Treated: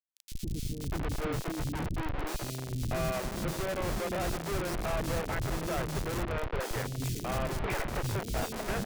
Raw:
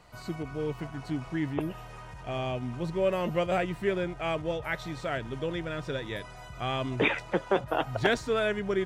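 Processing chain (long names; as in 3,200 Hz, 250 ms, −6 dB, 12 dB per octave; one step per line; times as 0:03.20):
low-pass filter 6,300 Hz 24 dB per octave
flat-topped bell 650 Hz +13 dB 2.4 octaves
in parallel at −1 dB: brickwall limiter −11.5 dBFS, peak gain reduction 11.5 dB
on the sum: octave-band graphic EQ 250/500/1,000/2,000 Hz −6/−8/−9/+7 dB
convolution reverb RT60 3.7 s, pre-delay 5 ms, DRR 9.5 dB
downward compressor 8 to 1, threshold −20 dBFS, peak gain reduction 8 dB
comparator with hysteresis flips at −26 dBFS
three-band delay without the direct sound highs, lows, mids 150/640 ms, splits 330/3,300 Hz
level −5 dB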